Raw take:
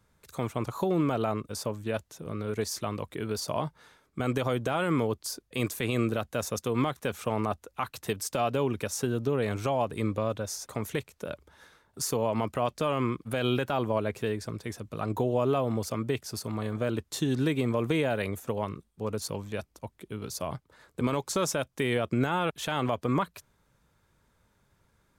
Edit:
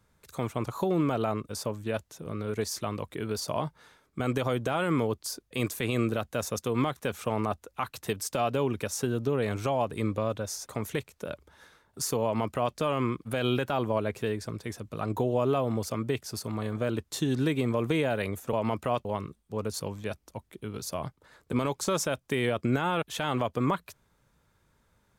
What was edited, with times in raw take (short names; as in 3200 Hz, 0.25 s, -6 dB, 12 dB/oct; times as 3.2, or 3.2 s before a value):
12.24–12.76 copy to 18.53